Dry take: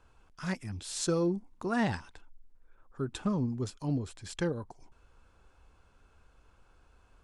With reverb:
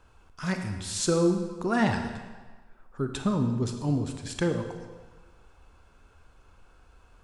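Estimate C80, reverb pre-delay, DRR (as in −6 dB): 8.0 dB, 26 ms, 5.5 dB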